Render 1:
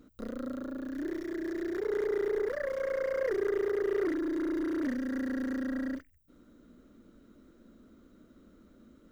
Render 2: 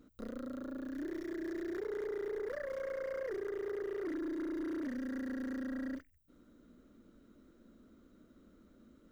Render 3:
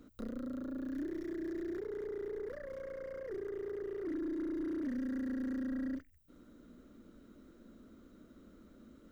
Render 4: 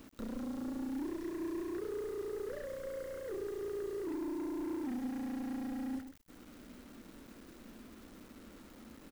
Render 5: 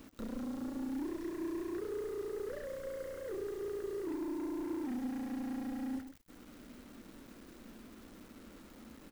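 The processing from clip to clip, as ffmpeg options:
-af "alimiter=level_in=1.68:limit=0.0631:level=0:latency=1:release=37,volume=0.596,volume=0.631"
-filter_complex "[0:a]acrossover=split=330[s0][s1];[s1]acompressor=threshold=0.00178:ratio=2.5[s2];[s0][s2]amix=inputs=2:normalize=0,volume=1.58"
-af "asoftclip=type=tanh:threshold=0.0133,acrusher=bits=9:mix=0:aa=0.000001,aecho=1:1:126:0.316,volume=1.41"
-af "flanger=delay=3.5:depth=7:regen=-84:speed=0.79:shape=triangular,volume=1.68"

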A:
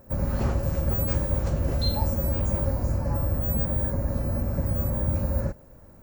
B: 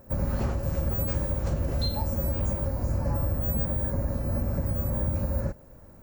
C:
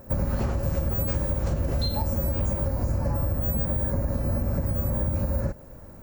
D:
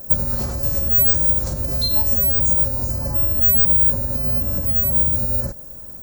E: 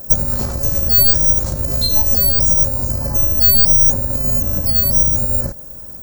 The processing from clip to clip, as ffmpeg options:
-af "alimiter=limit=0.133:level=0:latency=1:release=227"
-af "acompressor=threshold=0.0447:ratio=6,volume=1.88"
-af "aexciter=amount=5.4:drive=3.2:freq=4000"
-af "aeval=exprs='0.531*(cos(1*acos(clip(val(0)/0.531,-1,1)))-cos(1*PI/2))+0.0944*(cos(4*acos(clip(val(0)/0.531,-1,1)))-cos(4*PI/2))':c=same,volume=1.41"

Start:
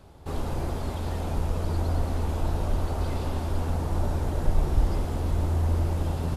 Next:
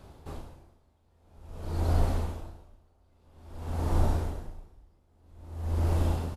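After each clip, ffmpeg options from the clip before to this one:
-filter_complex "[0:a]asplit=2[s0][s1];[s1]adelay=39,volume=0.562[s2];[s0][s2]amix=inputs=2:normalize=0,aeval=exprs='val(0)*pow(10,-39*(0.5-0.5*cos(2*PI*0.5*n/s))/20)':c=same"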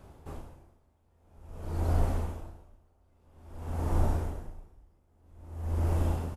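-af "equalizer=f=4100:w=1.9:g=-7,volume=0.841"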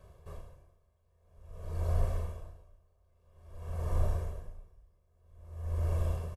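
-af "aecho=1:1:1.8:0.91,volume=0.422"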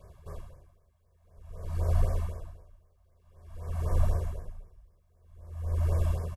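-af "afftfilt=real='re*(1-between(b*sr/1024,370*pow(3400/370,0.5+0.5*sin(2*PI*3.9*pts/sr))/1.41,370*pow(3400/370,0.5+0.5*sin(2*PI*3.9*pts/sr))*1.41))':imag='im*(1-between(b*sr/1024,370*pow(3400/370,0.5+0.5*sin(2*PI*3.9*pts/sr))/1.41,370*pow(3400/370,0.5+0.5*sin(2*PI*3.9*pts/sr))*1.41))':win_size=1024:overlap=0.75,volume=1.58"

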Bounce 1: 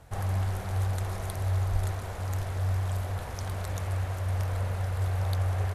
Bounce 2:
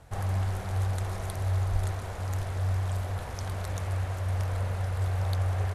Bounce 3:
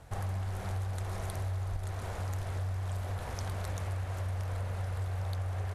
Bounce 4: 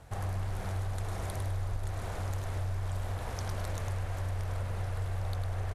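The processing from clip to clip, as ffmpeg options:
-af "lowpass=12000"
-af "acompressor=threshold=0.0251:ratio=6"
-filter_complex "[0:a]asplit=5[s0][s1][s2][s3][s4];[s1]adelay=103,afreqshift=-72,volume=0.501[s5];[s2]adelay=206,afreqshift=-144,volume=0.176[s6];[s3]adelay=309,afreqshift=-216,volume=0.0617[s7];[s4]adelay=412,afreqshift=-288,volume=0.0214[s8];[s0][s5][s6][s7][s8]amix=inputs=5:normalize=0"

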